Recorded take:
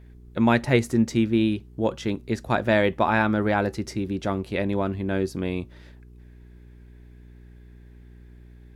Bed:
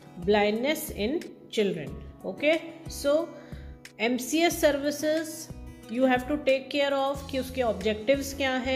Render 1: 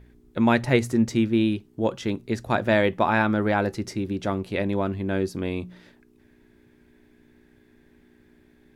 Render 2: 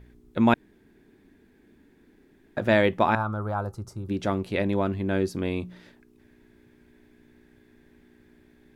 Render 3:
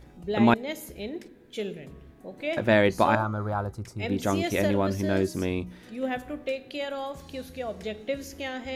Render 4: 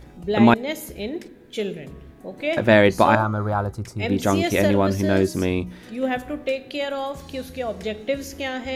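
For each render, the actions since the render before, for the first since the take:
de-hum 60 Hz, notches 3
0.54–2.57 s: room tone; 3.15–4.09 s: FFT filter 110 Hz 0 dB, 270 Hz -15 dB, 1.3 kHz 0 dB, 1.9 kHz -26 dB, 9 kHz -6 dB
add bed -7 dB
trim +6 dB; peak limiter -3 dBFS, peak gain reduction 1.5 dB

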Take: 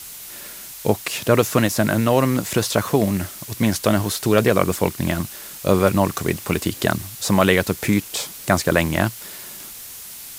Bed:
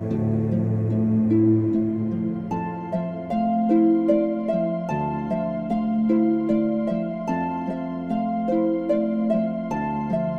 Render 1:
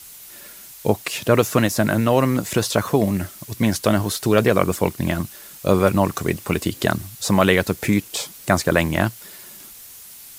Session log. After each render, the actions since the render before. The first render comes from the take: noise reduction 6 dB, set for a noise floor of -37 dBFS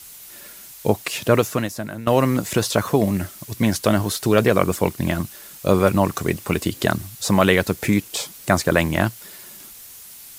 1.33–2.07 s: fade out quadratic, to -13.5 dB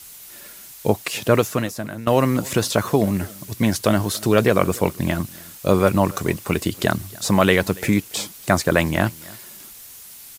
delay 283 ms -23.5 dB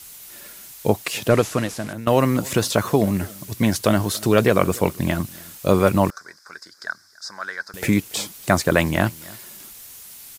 1.30–1.93 s: one-bit delta coder 64 kbps, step -31.5 dBFS; 6.10–7.74 s: two resonant band-passes 2.8 kHz, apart 1.7 oct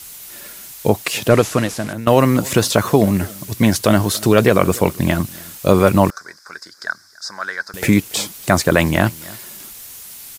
trim +5 dB; peak limiter -1 dBFS, peak gain reduction 2.5 dB

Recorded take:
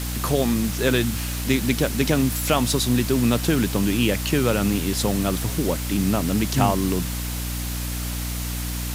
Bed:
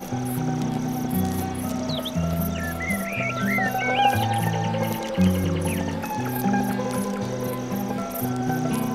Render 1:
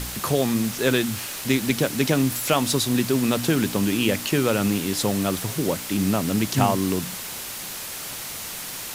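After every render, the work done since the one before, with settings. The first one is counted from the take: de-hum 60 Hz, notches 5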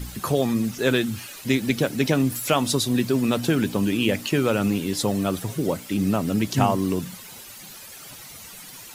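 noise reduction 12 dB, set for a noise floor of -34 dBFS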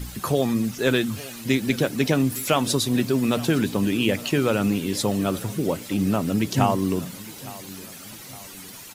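feedback delay 861 ms, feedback 49%, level -19 dB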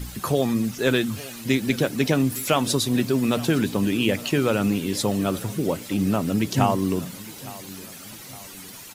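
no audible change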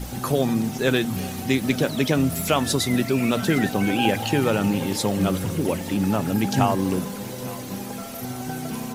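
add bed -6.5 dB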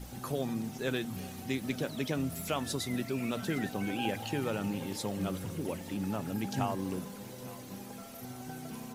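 trim -12.5 dB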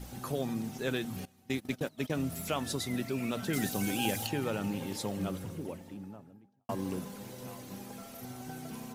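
1.25–2.20 s: gate -37 dBFS, range -20 dB; 3.53–4.27 s: tone controls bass +3 dB, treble +14 dB; 4.98–6.69 s: studio fade out

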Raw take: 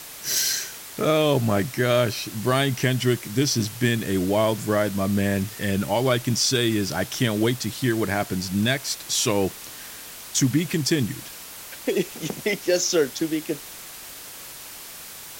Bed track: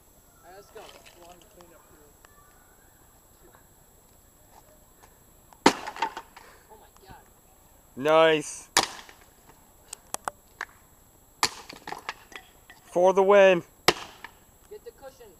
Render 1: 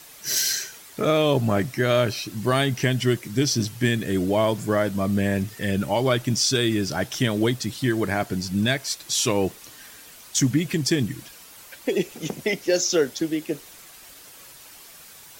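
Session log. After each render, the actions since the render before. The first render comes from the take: noise reduction 8 dB, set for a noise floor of -40 dBFS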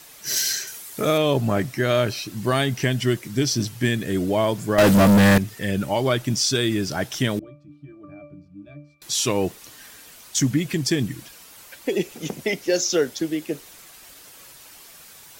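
0.67–1.18 s: peaking EQ 12 kHz +9.5 dB 1.5 oct; 4.78–5.38 s: waveshaping leveller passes 5; 7.39–9.02 s: pitch-class resonator D, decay 0.4 s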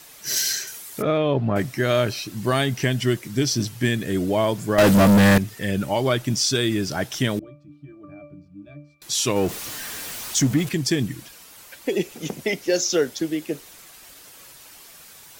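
1.02–1.56 s: distance through air 350 m; 9.36–10.69 s: jump at every zero crossing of -29.5 dBFS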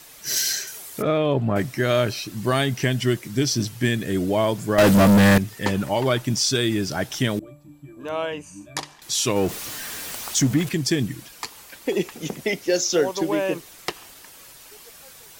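add bed track -8.5 dB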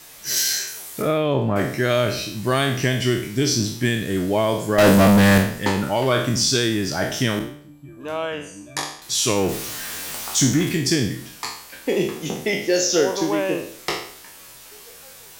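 spectral sustain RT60 0.59 s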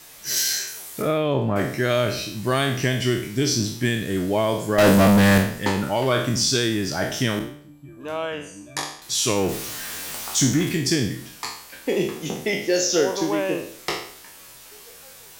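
trim -1.5 dB

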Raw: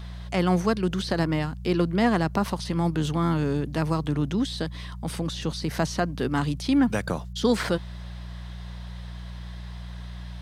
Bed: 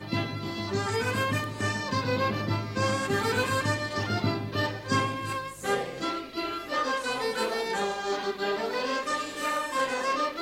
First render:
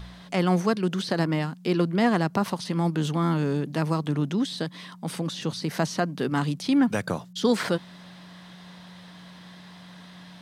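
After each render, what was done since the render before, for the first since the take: de-hum 60 Hz, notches 2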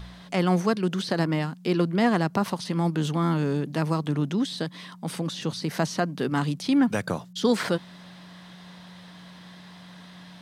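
no audible change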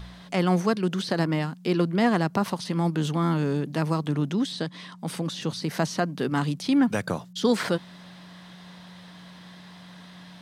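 4.52–4.99 s: low-pass 9.1 kHz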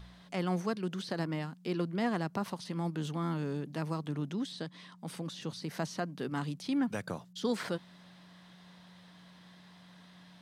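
trim -10 dB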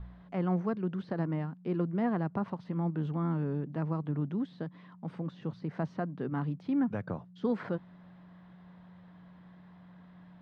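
low-pass 1.5 kHz 12 dB/octave; bass shelf 140 Hz +9 dB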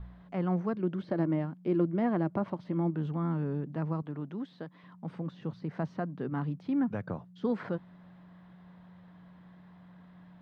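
0.79–2.94 s: small resonant body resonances 330/590/2200/3200 Hz, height 8 dB; 4.02–4.84 s: bass shelf 200 Hz -11.5 dB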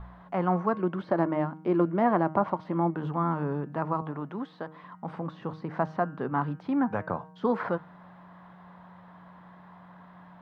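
peaking EQ 1 kHz +13.5 dB 1.8 oct; de-hum 157 Hz, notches 19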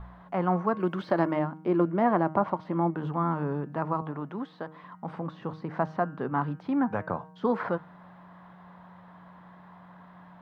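0.80–1.39 s: treble shelf 2.6 kHz +12 dB

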